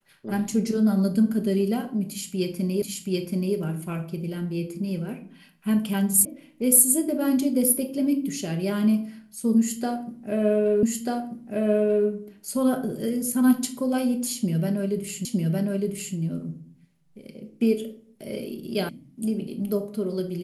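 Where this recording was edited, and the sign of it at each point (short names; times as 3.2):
2.82 repeat of the last 0.73 s
6.25 sound cut off
10.83 repeat of the last 1.24 s
15.25 repeat of the last 0.91 s
18.89 sound cut off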